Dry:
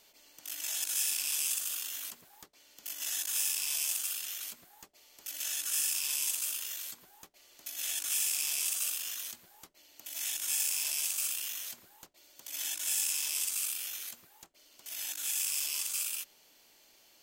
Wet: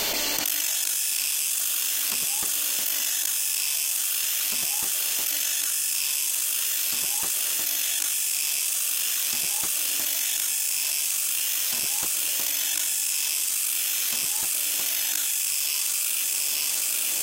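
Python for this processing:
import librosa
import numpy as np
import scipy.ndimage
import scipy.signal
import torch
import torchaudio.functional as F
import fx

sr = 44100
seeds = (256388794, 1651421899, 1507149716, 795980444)

y = fx.echo_feedback(x, sr, ms=880, feedback_pct=39, wet_db=-11)
y = fx.env_flatten(y, sr, amount_pct=100)
y = F.gain(torch.from_numpy(y), 3.5).numpy()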